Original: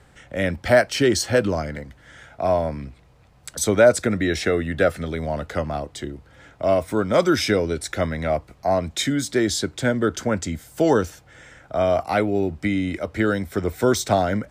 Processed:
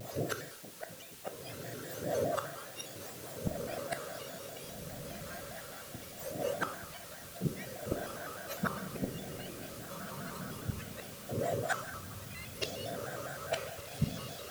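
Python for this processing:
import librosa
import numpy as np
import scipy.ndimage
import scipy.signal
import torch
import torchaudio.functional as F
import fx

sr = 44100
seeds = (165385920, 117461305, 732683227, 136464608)

p1 = fx.octave_mirror(x, sr, pivot_hz=950.0)
p2 = fx.peak_eq(p1, sr, hz=610.0, db=13.0, octaves=0.38)
p3 = fx.over_compress(p2, sr, threshold_db=-24.0, ratio=-0.5)
p4 = fx.harmonic_tremolo(p3, sr, hz=4.4, depth_pct=100, crossover_hz=480.0)
p5 = fx.gate_flip(p4, sr, shuts_db=-27.0, range_db=-33)
p6 = fx.dmg_noise_colour(p5, sr, seeds[0], colour='white', level_db=-61.0)
p7 = p6 + fx.echo_diffused(p6, sr, ms=1591, feedback_pct=42, wet_db=-5.0, dry=0)
p8 = fx.rev_gated(p7, sr, seeds[1], gate_ms=300, shape='falling', drr_db=5.5)
p9 = fx.vibrato_shape(p8, sr, shape='square', rate_hz=4.9, depth_cents=160.0)
y = p9 * 10.0 ** (7.5 / 20.0)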